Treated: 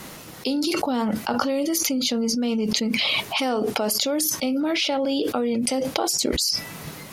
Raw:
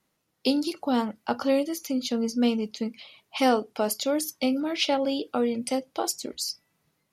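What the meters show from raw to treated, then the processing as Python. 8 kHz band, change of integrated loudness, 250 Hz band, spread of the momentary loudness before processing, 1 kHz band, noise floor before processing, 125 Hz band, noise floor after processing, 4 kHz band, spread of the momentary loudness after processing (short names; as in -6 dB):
+9.0 dB, +4.0 dB, +2.5 dB, 8 LU, +1.5 dB, -75 dBFS, n/a, -40 dBFS, +8.0 dB, 3 LU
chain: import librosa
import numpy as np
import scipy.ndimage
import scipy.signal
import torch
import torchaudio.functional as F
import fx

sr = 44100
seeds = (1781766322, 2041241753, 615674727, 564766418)

y = fx.env_flatten(x, sr, amount_pct=100)
y = y * librosa.db_to_amplitude(-4.5)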